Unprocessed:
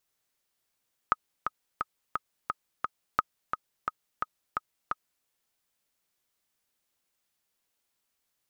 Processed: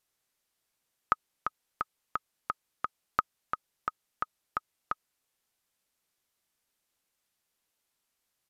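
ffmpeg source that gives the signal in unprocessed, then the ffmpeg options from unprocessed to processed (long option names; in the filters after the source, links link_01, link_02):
-f lavfi -i "aevalsrc='pow(10,(-9-6.5*gte(mod(t,6*60/174),60/174))/20)*sin(2*PI*1260*mod(t,60/174))*exp(-6.91*mod(t,60/174)/0.03)':duration=4.13:sample_rate=44100"
-af "aresample=32000,aresample=44100"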